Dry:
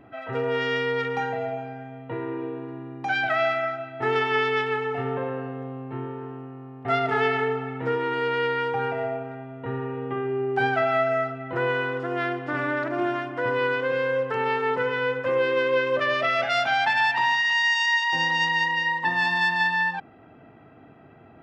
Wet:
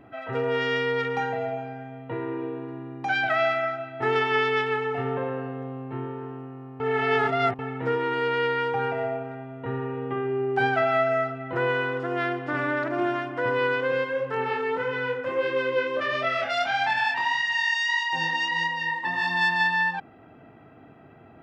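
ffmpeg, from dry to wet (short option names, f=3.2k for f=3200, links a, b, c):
-filter_complex "[0:a]asplit=3[a][b][c];[a]afade=t=out:st=14.03:d=0.02[d];[b]flanger=delay=22.5:depth=5:speed=1.6,afade=t=in:st=14.03:d=0.02,afade=t=out:st=19.37:d=0.02[e];[c]afade=t=in:st=19.37:d=0.02[f];[d][e][f]amix=inputs=3:normalize=0,asplit=3[g][h][i];[g]atrim=end=6.802[j];[h]atrim=start=6.798:end=7.592,asetpts=PTS-STARTPTS,areverse[k];[i]atrim=start=7.588[l];[j][k]acrossfade=d=0.004:c1=hsin:c2=hsin[m];[m][l]acrossfade=d=0.004:c1=hsin:c2=hsin"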